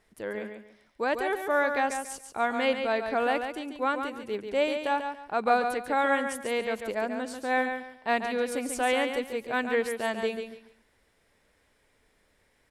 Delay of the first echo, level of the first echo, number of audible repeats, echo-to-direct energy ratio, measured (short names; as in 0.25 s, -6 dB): 0.141 s, -7.0 dB, 3, -6.5 dB